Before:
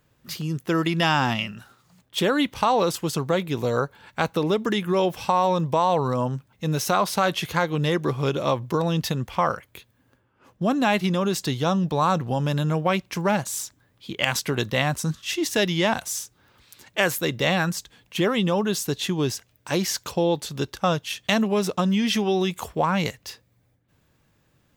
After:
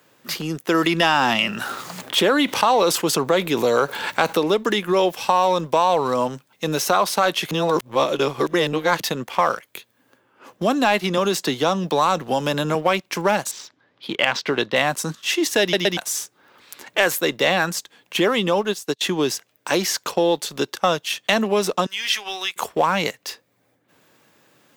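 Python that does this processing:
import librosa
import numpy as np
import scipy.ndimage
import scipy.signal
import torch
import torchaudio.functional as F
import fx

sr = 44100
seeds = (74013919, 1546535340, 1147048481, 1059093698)

y = fx.env_flatten(x, sr, amount_pct=50, at=(0.74, 4.4))
y = fx.band_squash(y, sr, depth_pct=40, at=(11.17, 12.75))
y = fx.lowpass(y, sr, hz=4900.0, slope=24, at=(13.51, 14.76))
y = fx.upward_expand(y, sr, threshold_db=-38.0, expansion=2.5, at=(18.59, 19.01))
y = fx.highpass(y, sr, hz=1500.0, slope=12, at=(21.86, 22.56))
y = fx.edit(y, sr, fx.reverse_span(start_s=7.51, length_s=1.49),
    fx.stutter_over(start_s=15.61, slice_s=0.12, count=3), tone=tone)
y = scipy.signal.sosfilt(scipy.signal.butter(2, 290.0, 'highpass', fs=sr, output='sos'), y)
y = fx.leveller(y, sr, passes=1)
y = fx.band_squash(y, sr, depth_pct=40)
y = F.gain(torch.from_numpy(y), 1.0).numpy()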